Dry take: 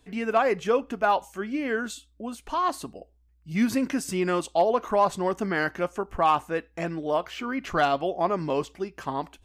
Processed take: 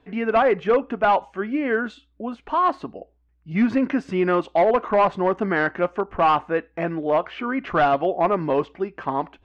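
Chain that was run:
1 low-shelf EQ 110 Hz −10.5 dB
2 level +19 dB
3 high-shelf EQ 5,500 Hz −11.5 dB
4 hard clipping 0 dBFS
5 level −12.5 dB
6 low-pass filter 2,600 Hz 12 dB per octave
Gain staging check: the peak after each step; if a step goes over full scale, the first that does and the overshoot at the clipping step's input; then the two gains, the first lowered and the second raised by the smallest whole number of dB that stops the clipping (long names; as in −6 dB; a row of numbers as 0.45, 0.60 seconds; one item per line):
−11.0, +8.0, +7.0, 0.0, −12.5, −12.0 dBFS
step 2, 7.0 dB
step 2 +12 dB, step 5 −5.5 dB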